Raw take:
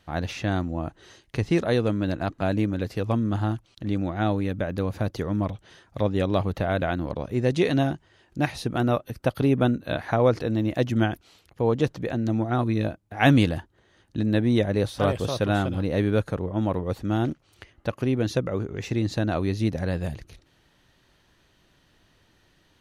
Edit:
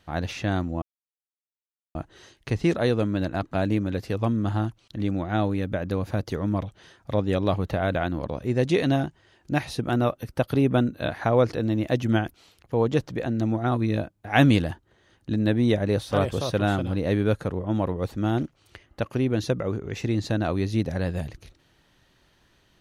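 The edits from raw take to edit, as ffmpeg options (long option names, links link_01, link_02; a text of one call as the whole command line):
ffmpeg -i in.wav -filter_complex "[0:a]asplit=2[link_01][link_02];[link_01]atrim=end=0.82,asetpts=PTS-STARTPTS,afade=type=out:start_time=0.816:duration=0.004:curve=hsin,apad=pad_dur=1.13[link_03];[link_02]atrim=start=0.82,asetpts=PTS-STARTPTS,afade=type=in:duration=0.004:curve=hsin[link_04];[link_03][link_04]concat=n=2:v=0:a=1" out.wav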